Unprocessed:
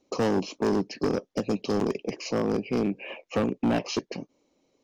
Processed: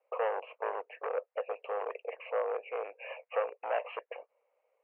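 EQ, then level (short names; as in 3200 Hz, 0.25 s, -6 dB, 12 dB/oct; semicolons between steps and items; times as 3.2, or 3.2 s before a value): Chebyshev band-pass 480–2800 Hz, order 5; air absorption 360 m; 0.0 dB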